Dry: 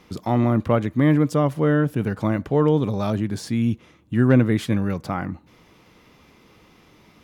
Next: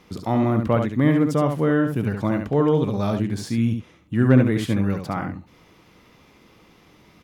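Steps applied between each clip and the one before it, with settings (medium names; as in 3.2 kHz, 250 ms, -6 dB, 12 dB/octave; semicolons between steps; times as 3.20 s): delay 70 ms -6 dB; trim -1 dB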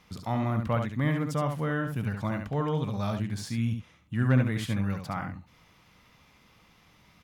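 peaking EQ 360 Hz -11.5 dB 1.2 oct; trim -4 dB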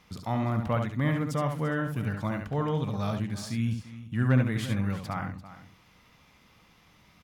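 delay 343 ms -15 dB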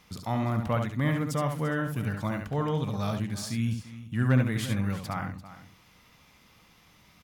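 treble shelf 5.3 kHz +6.5 dB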